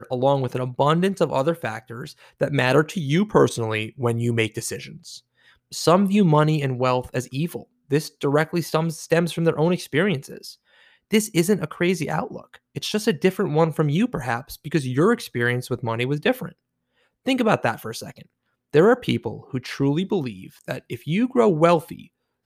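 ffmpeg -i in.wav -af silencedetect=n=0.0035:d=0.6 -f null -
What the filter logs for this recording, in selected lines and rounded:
silence_start: 16.52
silence_end: 17.25 | silence_duration: 0.73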